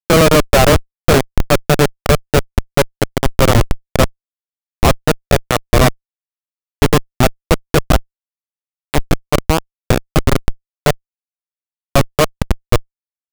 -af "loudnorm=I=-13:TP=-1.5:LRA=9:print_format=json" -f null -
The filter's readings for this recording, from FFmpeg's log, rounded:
"input_i" : "-16.0",
"input_tp" : "-0.9",
"input_lra" : "5.1",
"input_thresh" : "-26.4",